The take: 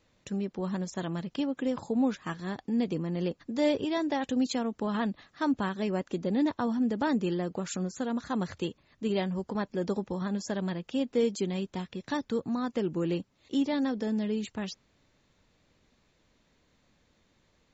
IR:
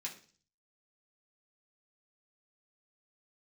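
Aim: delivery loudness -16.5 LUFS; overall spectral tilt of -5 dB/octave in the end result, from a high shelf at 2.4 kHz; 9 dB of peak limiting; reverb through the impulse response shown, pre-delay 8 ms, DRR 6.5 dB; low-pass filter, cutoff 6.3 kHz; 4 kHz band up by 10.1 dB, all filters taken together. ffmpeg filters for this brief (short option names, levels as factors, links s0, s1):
-filter_complex "[0:a]lowpass=6300,highshelf=f=2400:g=6.5,equalizer=f=4000:t=o:g=7.5,alimiter=limit=0.1:level=0:latency=1,asplit=2[s0][s1];[1:a]atrim=start_sample=2205,adelay=8[s2];[s1][s2]afir=irnorm=-1:irlink=0,volume=0.531[s3];[s0][s3]amix=inputs=2:normalize=0,volume=5.01"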